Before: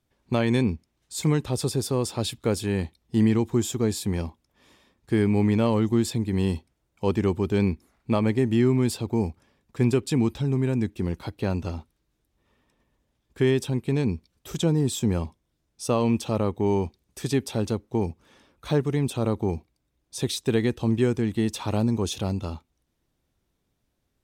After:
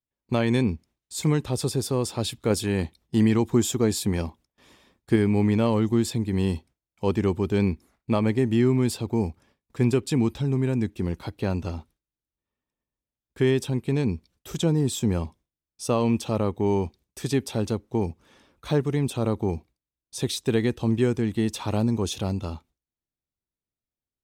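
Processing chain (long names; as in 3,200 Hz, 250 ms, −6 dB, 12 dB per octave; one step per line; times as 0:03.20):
noise gate with hold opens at −52 dBFS
0:02.50–0:05.16: harmonic and percussive parts rebalanced percussive +4 dB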